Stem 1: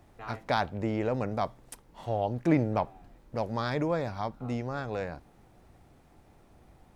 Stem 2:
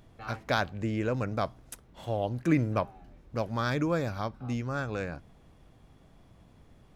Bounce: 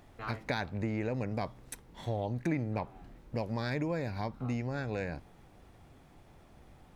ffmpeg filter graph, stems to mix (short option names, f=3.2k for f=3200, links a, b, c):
-filter_complex "[0:a]volume=-1dB[a];[1:a]volume=-5.5dB[b];[a][b]amix=inputs=2:normalize=0,equalizer=f=2.4k:t=o:w=2:g=2.5,acompressor=threshold=-31dB:ratio=3"